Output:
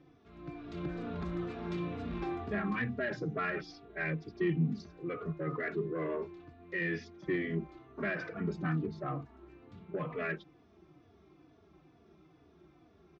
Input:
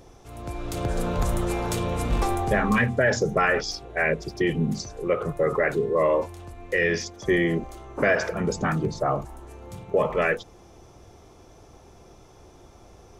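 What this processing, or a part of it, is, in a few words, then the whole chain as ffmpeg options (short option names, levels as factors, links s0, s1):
barber-pole flanger into a guitar amplifier: -filter_complex "[0:a]asettb=1/sr,asplit=3[s0][s1][s2];[s0]atrim=end=5.924[s3];[s1]atrim=start=5.92:end=6.4,asetpts=PTS-STARTPTS,afade=t=in:d=0.004:c=qsin,afade=t=out:st=0.476:d=0.004:c=qsin,equalizer=f=410:w=8:g=14[s4];[s2]atrim=start=6.396[s5];[s3][s4]acrossfade=d=0.004:c1=hsin:c2=qsin[s6];[s6][s5]acrossfade=d=0.004:c1=qsin:c2=hsin,asplit=2[s7][s8];[s8]adelay=3.4,afreqshift=-2.2[s9];[s7][s9]amix=inputs=2:normalize=1,asoftclip=type=tanh:threshold=0.141,highpass=93,equalizer=f=110:t=q:w=4:g=-8,equalizer=f=160:t=q:w=4:g=8,equalizer=f=310:t=q:w=4:g=7,equalizer=f=530:t=q:w=4:g=-10,equalizer=f=870:t=q:w=4:g=-9,equalizer=f=3100:t=q:w=4:g=-4,lowpass=f=3800:w=0.5412,lowpass=f=3800:w=1.3066,volume=0.447"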